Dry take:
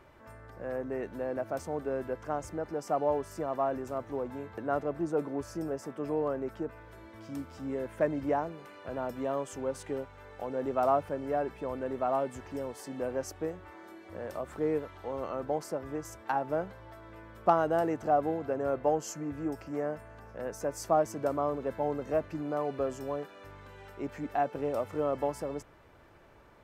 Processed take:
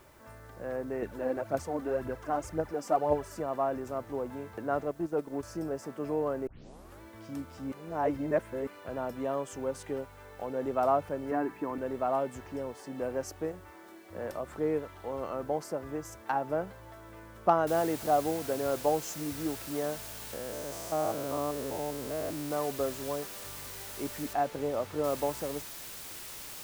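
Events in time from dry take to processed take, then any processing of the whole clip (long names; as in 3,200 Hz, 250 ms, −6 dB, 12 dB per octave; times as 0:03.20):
0:01.02–0:03.40: phase shifter 1.9 Hz, delay 4.2 ms, feedback 56%
0:04.85–0:05.43: transient designer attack −2 dB, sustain −10 dB
0:06.47: tape start 0.54 s
0:07.72–0:08.67: reverse
0:11.31–0:11.78: loudspeaker in its box 130–4,300 Hz, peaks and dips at 300 Hz +10 dB, 560 Hz −8 dB, 990 Hz +6 dB, 1,800 Hz +5 dB, 3,400 Hz −7 dB
0:12.41–0:12.94: low-pass filter 8,100 Hz → 3,400 Hz 6 dB per octave
0:13.52–0:14.32: multiband upward and downward expander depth 40%
0:17.67: noise floor change −66 dB −44 dB
0:20.33–0:22.51: spectrum averaged block by block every 200 ms
0:24.33–0:25.04: high-shelf EQ 4,700 Hz −11.5 dB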